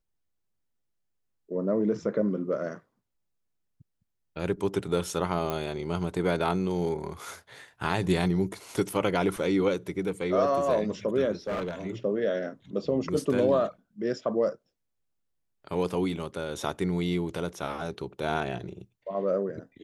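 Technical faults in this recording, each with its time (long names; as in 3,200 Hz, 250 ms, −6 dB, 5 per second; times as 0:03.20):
0:05.50: click −16 dBFS
0:11.47–0:11.75: clipping −27 dBFS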